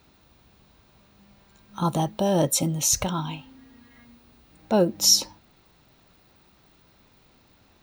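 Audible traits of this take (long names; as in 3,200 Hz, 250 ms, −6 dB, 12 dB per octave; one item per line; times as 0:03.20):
background noise floor −60 dBFS
spectral slope −4.0 dB per octave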